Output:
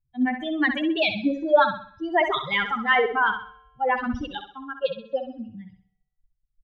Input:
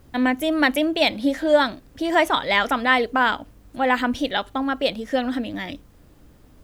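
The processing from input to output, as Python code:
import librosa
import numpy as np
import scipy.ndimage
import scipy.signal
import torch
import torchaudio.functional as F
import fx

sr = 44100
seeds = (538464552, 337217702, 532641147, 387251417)

y = fx.bin_expand(x, sr, power=3.0)
y = scipy.signal.sosfilt(scipy.signal.butter(4, 3500.0, 'lowpass', fs=sr, output='sos'), y)
y = fx.transient(y, sr, attack_db=-1, sustain_db=fx.steps((0.0, 7.0), (4.37, -5.0)))
y = fx.comb_fb(y, sr, f0_hz=150.0, decay_s=1.1, harmonics='odd', damping=0.0, mix_pct=50)
y = fx.room_flutter(y, sr, wall_m=11.1, rt60_s=0.46)
y = y * 10.0 ** (8.0 / 20.0)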